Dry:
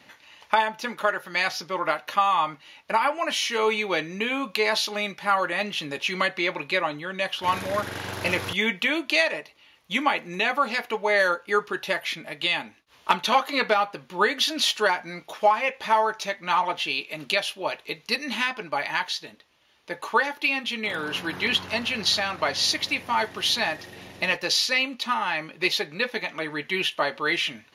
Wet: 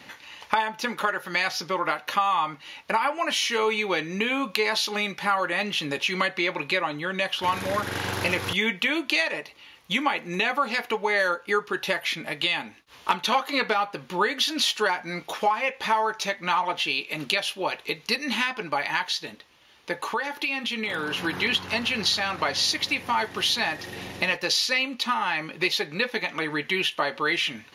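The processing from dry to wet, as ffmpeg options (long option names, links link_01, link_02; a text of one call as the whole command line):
ffmpeg -i in.wav -filter_complex "[0:a]asettb=1/sr,asplit=3[link_01][link_02][link_03];[link_01]atrim=end=20.024[link_04];[link_02]atrim=start=20.02:end=21.24,asetpts=PTS-STARTPTS,afade=type=in:duration=0.004:curve=qsin,afade=type=out:start_time=1.216:duration=0.004:curve=qsin,acompressor=threshold=-32dB:ratio=2:attack=3.2:release=140:knee=1:detection=peak[link_05];[link_03]atrim=start=21.236[link_06];[link_04][link_05]acrossfade=duration=0.004:curve1=hsin:curve2=qsin[link_07];[link_07][link_06]acrossfade=duration=0.004:curve1=qsin:curve2=hsin,bandreject=frequency=630:width=12,acompressor=threshold=-33dB:ratio=2,volume=6.5dB" out.wav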